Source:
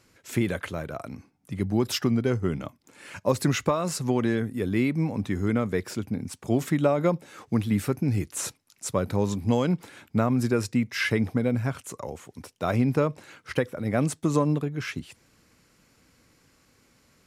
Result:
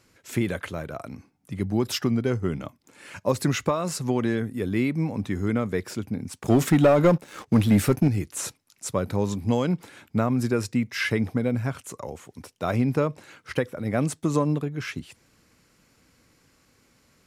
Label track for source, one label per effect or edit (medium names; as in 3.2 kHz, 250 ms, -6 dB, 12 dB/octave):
6.390000	8.080000	waveshaping leveller passes 2